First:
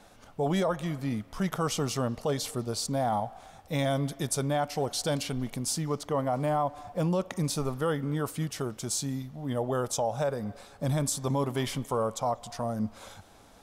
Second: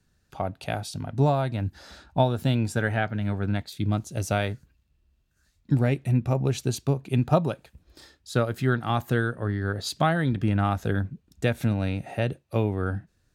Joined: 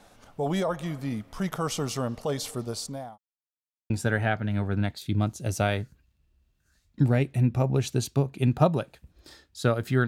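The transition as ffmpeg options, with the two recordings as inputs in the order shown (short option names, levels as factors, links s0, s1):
-filter_complex "[0:a]apad=whole_dur=10.07,atrim=end=10.07,asplit=2[s0][s1];[s0]atrim=end=3.18,asetpts=PTS-STARTPTS,afade=t=out:st=2.69:d=0.49[s2];[s1]atrim=start=3.18:end=3.9,asetpts=PTS-STARTPTS,volume=0[s3];[1:a]atrim=start=2.61:end=8.78,asetpts=PTS-STARTPTS,afade=t=in:d=0.004:c=hsin[s4];[s2][s3][s4]concat=n=3:v=0:a=1"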